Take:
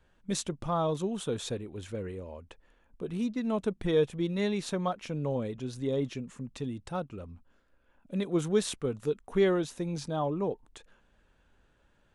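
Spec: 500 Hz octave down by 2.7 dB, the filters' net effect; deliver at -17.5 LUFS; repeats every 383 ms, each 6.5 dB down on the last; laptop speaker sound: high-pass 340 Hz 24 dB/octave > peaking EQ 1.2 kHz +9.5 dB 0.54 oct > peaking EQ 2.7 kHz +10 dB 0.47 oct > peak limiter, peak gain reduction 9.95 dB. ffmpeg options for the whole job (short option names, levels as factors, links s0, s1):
-af "highpass=f=340:w=0.5412,highpass=f=340:w=1.3066,equalizer=f=500:t=o:g=-3,equalizer=f=1200:t=o:w=0.54:g=9.5,equalizer=f=2700:t=o:w=0.47:g=10,aecho=1:1:383|766|1149|1532|1915|2298:0.473|0.222|0.105|0.0491|0.0231|0.0109,volume=8.41,alimiter=limit=0.501:level=0:latency=1"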